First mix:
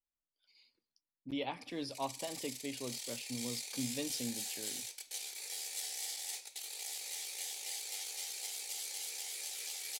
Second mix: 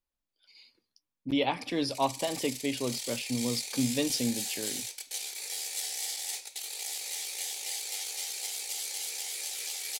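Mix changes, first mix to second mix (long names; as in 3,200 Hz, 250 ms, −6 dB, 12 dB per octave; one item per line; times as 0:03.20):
speech +10.5 dB
background +6.0 dB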